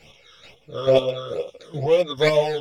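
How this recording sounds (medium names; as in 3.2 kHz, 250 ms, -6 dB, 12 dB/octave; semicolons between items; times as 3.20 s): phasing stages 12, 2.2 Hz, lowest notch 750–1500 Hz; chopped level 2.3 Hz, depth 60%, duty 25%; a shimmering, thickened sound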